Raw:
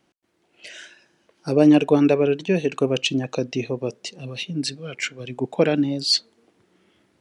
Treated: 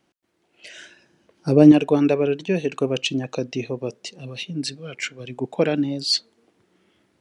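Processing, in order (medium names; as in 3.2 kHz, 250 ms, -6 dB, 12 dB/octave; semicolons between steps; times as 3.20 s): 0.77–1.72 s: bass shelf 370 Hz +9 dB; trim -1.5 dB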